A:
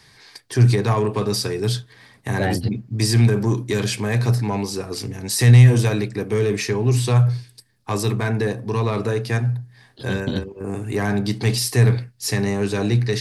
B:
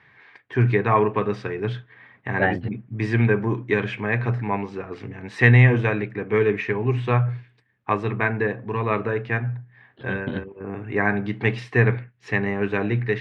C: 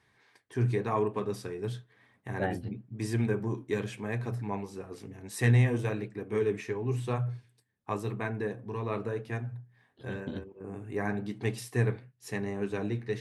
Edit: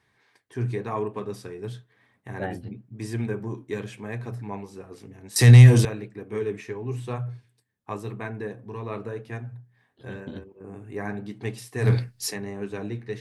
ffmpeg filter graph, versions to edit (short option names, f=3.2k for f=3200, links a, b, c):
-filter_complex "[0:a]asplit=2[a][b];[2:a]asplit=3[c][d][e];[c]atrim=end=5.362[f];[a]atrim=start=5.358:end=5.852[g];[d]atrim=start=5.848:end=11.93[h];[b]atrim=start=11.77:end=12.36[i];[e]atrim=start=12.2[j];[f][g]acrossfade=d=0.004:c1=hsin:c2=hsin[k];[k][h]acrossfade=d=0.004:c1=hsin:c2=hsin[l];[l][i]acrossfade=d=0.16:c1=tri:c2=tri[m];[m][j]acrossfade=d=0.16:c1=tri:c2=tri"